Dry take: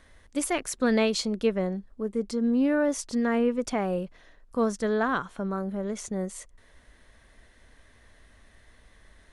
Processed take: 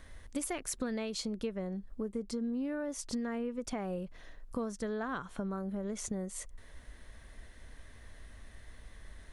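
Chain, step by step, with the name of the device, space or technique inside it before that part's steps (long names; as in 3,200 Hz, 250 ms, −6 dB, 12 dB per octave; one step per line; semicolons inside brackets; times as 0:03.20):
ASMR close-microphone chain (low-shelf EQ 140 Hz +7 dB; downward compressor 6 to 1, threshold −34 dBFS, peak gain reduction 15.5 dB; high-shelf EQ 9,900 Hz +5.5 dB)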